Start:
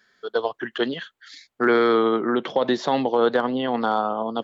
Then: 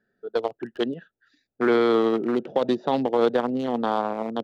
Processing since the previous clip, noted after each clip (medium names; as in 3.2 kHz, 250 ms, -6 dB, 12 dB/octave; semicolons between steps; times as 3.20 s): local Wiener filter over 41 samples; dynamic bell 1.6 kHz, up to -5 dB, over -40 dBFS, Q 2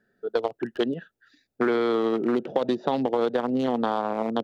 compression, threshold -24 dBFS, peak gain reduction 9 dB; trim +4 dB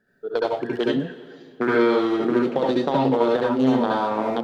reverberation, pre-delay 65 ms, DRR -4 dB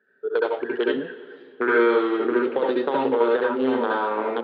cabinet simulation 350–3300 Hz, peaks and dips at 420 Hz +6 dB, 690 Hz -8 dB, 1.5 kHz +5 dB